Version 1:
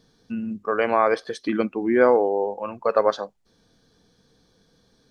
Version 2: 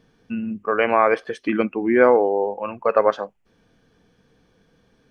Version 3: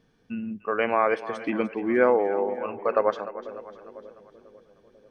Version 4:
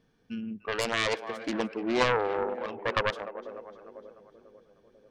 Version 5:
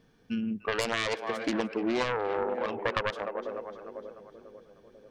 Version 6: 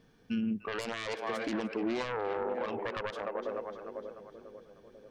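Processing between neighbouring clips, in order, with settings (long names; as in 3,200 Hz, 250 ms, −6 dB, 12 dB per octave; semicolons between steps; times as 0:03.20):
high shelf with overshoot 3,300 Hz −6 dB, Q 3; level +2 dB
echo with a time of its own for lows and highs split 520 Hz, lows 495 ms, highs 299 ms, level −13.5 dB; level −5.5 dB
phase distortion by the signal itself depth 0.8 ms; level −3.5 dB
downward compressor 10 to 1, threshold −30 dBFS, peak gain reduction 11.5 dB; level +5 dB
brickwall limiter −24 dBFS, peak gain reduction 11 dB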